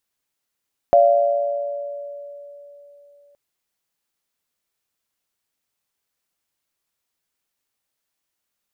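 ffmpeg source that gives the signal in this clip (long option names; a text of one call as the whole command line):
ffmpeg -f lavfi -i "aevalsrc='0.266*pow(10,-3*t/3.63)*sin(2*PI*574*t)+0.299*pow(10,-3*t/1.91)*sin(2*PI*690*t)':duration=2.42:sample_rate=44100" out.wav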